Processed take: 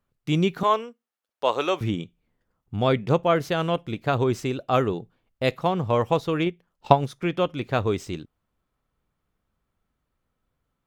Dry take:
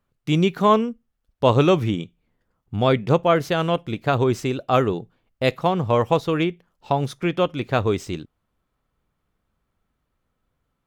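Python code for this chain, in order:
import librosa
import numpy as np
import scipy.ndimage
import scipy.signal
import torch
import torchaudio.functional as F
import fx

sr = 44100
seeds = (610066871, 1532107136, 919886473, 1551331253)

y = fx.highpass(x, sr, hz=540.0, slope=12, at=(0.63, 1.81))
y = fx.transient(y, sr, attack_db=10, sustain_db=-3, at=(6.46, 7.21))
y = y * 10.0 ** (-3.0 / 20.0)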